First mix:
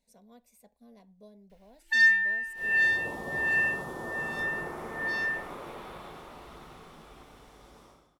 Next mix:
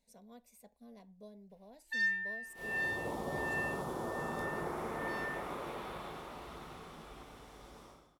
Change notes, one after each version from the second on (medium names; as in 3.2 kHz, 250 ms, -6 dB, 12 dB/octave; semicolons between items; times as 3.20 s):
first sound -12.0 dB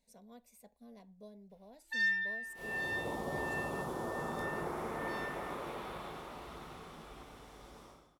first sound: send on